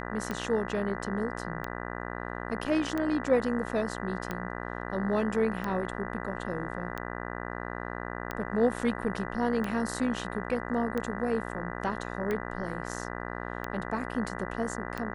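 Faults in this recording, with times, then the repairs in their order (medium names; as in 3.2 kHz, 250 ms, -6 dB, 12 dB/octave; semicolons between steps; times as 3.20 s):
buzz 60 Hz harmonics 33 -37 dBFS
tick 45 rpm -19 dBFS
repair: de-click; de-hum 60 Hz, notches 33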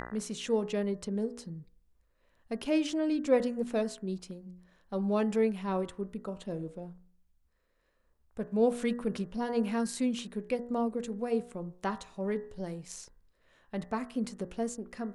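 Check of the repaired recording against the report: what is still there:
nothing left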